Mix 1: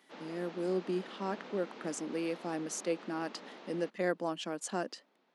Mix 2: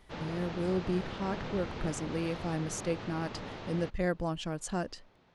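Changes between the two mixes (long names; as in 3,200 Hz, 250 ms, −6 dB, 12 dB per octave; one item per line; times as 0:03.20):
background +7.0 dB
master: remove Butterworth high-pass 210 Hz 36 dB per octave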